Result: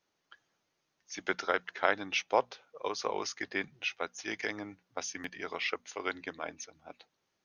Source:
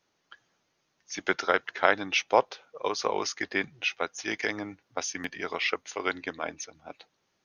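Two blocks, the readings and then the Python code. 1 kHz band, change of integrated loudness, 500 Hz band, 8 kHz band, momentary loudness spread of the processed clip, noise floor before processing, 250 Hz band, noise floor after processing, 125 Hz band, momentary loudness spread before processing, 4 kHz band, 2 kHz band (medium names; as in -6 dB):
-5.5 dB, -5.5 dB, -5.5 dB, -5.5 dB, 13 LU, -76 dBFS, -5.5 dB, -81 dBFS, -6.0 dB, 13 LU, -5.5 dB, -5.5 dB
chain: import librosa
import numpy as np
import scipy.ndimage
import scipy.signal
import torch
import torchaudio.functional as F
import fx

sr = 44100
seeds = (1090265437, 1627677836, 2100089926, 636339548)

y = fx.hum_notches(x, sr, base_hz=60, count=4)
y = F.gain(torch.from_numpy(y), -5.5).numpy()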